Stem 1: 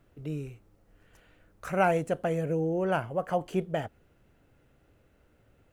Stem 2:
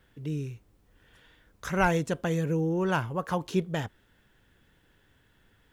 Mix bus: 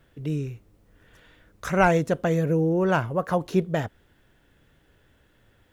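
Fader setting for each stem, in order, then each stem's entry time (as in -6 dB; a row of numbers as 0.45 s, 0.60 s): -1.0 dB, +0.5 dB; 0.00 s, 0.00 s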